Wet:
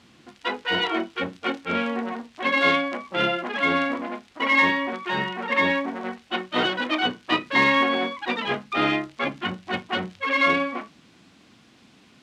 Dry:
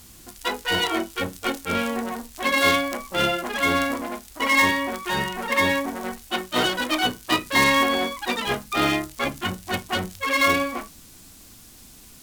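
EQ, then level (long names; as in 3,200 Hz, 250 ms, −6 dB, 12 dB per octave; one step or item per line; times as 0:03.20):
Chebyshev band-pass filter 170–2,900 Hz, order 2
0.0 dB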